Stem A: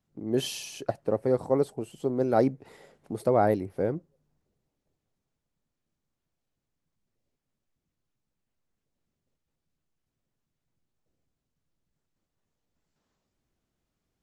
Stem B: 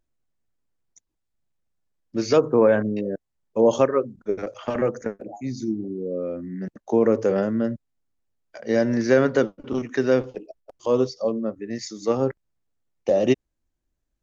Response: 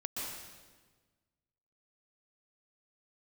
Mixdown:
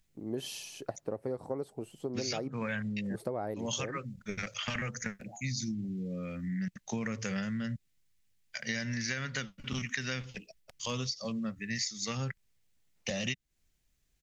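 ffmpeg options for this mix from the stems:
-filter_complex "[0:a]volume=-5dB,asplit=2[a][b];[1:a]firequalizer=gain_entry='entry(180,0);entry(320,-22);entry(2000,8)':delay=0.05:min_phase=1,volume=2.5dB[c];[b]apad=whole_len=631674[d];[c][d]sidechaincompress=threshold=-30dB:ratio=8:attack=8.6:release=413[e];[a][e]amix=inputs=2:normalize=0,acompressor=threshold=-31dB:ratio=16"

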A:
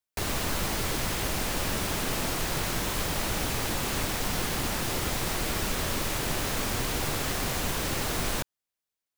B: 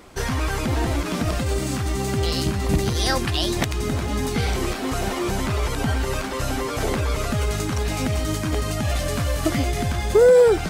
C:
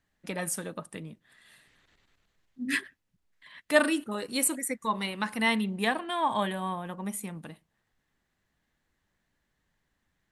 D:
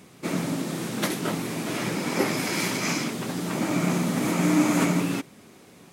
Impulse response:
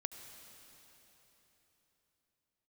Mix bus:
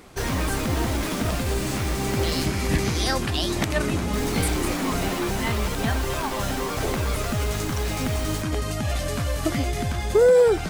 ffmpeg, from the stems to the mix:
-filter_complex "[0:a]volume=-6dB,asplit=3[a][b][c];[a]atrim=end=2.46,asetpts=PTS-STARTPTS,afade=t=out:st=2.456:d=0.004:c=hsin[d];[b]atrim=start=2.46:end=4.13,asetpts=PTS-STARTPTS,volume=0[e];[c]atrim=start=4.13,asetpts=PTS-STARTPTS,afade=t=in:d=0.004:c=hsin[f];[d][e][f]concat=n=3:v=0:a=1[g];[1:a]volume=-2.5dB[h];[2:a]volume=-5dB[i];[3:a]asoftclip=type=tanh:threshold=-24dB,volume=-3dB[j];[g][h][i][j]amix=inputs=4:normalize=0"

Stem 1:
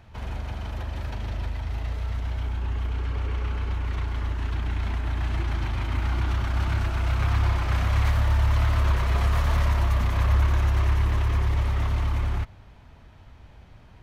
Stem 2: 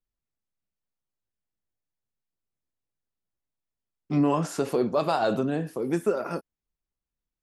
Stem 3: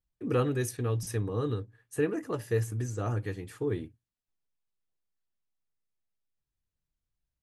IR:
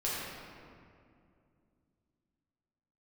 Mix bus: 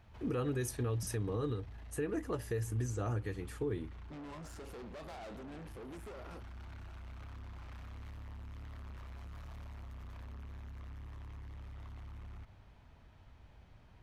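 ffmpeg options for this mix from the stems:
-filter_complex "[0:a]volume=-10dB[a];[1:a]acrossover=split=1000|3500[b][c][d];[b]acompressor=threshold=-24dB:ratio=4[e];[c]acompressor=threshold=-37dB:ratio=4[f];[d]acompressor=threshold=-43dB:ratio=4[g];[e][f][g]amix=inputs=3:normalize=0,volume=0dB[h];[2:a]volume=-2dB[i];[a][h]amix=inputs=2:normalize=0,asoftclip=type=tanh:threshold=-34.5dB,alimiter=level_in=21dB:limit=-24dB:level=0:latency=1,volume=-21dB,volume=0dB[j];[i][j]amix=inputs=2:normalize=0,alimiter=level_in=3dB:limit=-24dB:level=0:latency=1:release=139,volume=-3dB"

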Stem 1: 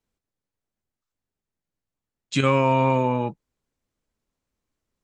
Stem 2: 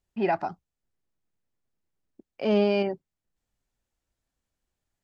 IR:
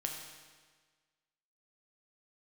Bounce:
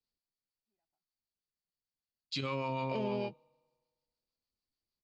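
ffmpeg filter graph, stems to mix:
-filter_complex "[0:a]equalizer=f=1.6k:w=3.8:g=-5.5,acrossover=split=700[a][b];[a]aeval=exprs='val(0)*(1-0.5/2+0.5/2*cos(2*PI*6.6*n/s))':c=same[c];[b]aeval=exprs='val(0)*(1-0.5/2-0.5/2*cos(2*PI*6.6*n/s))':c=same[d];[c][d]amix=inputs=2:normalize=0,lowpass=f=4.6k:t=q:w=8.9,volume=-13.5dB,asplit=3[e][f][g];[f]volume=-20.5dB[h];[1:a]alimiter=limit=-19.5dB:level=0:latency=1,adelay=500,volume=-6dB[i];[g]apad=whole_len=243875[j];[i][j]sidechaingate=range=-57dB:threshold=-39dB:ratio=16:detection=peak[k];[2:a]atrim=start_sample=2205[l];[h][l]afir=irnorm=-1:irlink=0[m];[e][k][m]amix=inputs=3:normalize=0,alimiter=level_in=2dB:limit=-24dB:level=0:latency=1:release=23,volume=-2dB"

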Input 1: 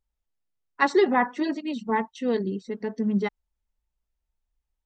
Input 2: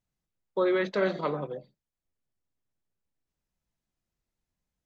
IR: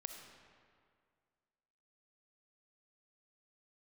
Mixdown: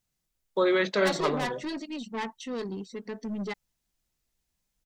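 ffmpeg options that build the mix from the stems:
-filter_complex "[0:a]acontrast=38,aeval=exprs='(tanh(8.91*val(0)+0.15)-tanh(0.15))/8.91':c=same,adelay=250,volume=-10.5dB[a];[1:a]volume=1dB[b];[a][b]amix=inputs=2:normalize=0,highshelf=f=2.5k:g=9.5"

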